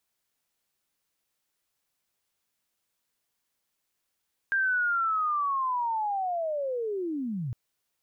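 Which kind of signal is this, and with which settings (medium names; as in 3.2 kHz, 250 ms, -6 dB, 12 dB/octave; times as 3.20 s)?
sweep linear 1.6 kHz -> 110 Hz -22.5 dBFS -> -29.5 dBFS 3.01 s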